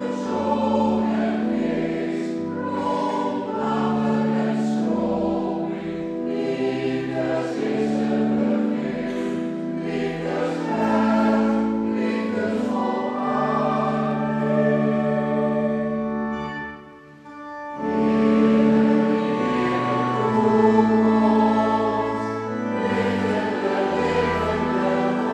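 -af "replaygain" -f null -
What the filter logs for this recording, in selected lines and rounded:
track_gain = +2.8 dB
track_peak = 0.386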